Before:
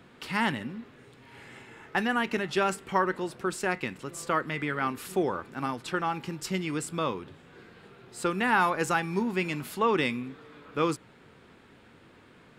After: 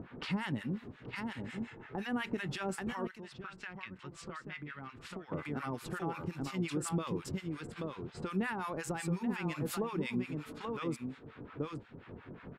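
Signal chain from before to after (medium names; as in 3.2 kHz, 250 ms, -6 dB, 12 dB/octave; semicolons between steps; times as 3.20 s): compression 6:1, threshold -30 dBFS, peak gain reduction 10.5 dB; bass shelf 360 Hz +8 dB; delay 833 ms -6 dB; gate -43 dBFS, range -6 dB; 3.07–5.32 s: amplifier tone stack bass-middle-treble 5-5-5; level-controlled noise filter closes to 1.7 kHz, open at -31 dBFS; peak limiter -24 dBFS, peak gain reduction 7.5 dB; harmonic tremolo 5.6 Hz, depth 100%, crossover 890 Hz; upward compressor, threshold -38 dBFS; trim +1 dB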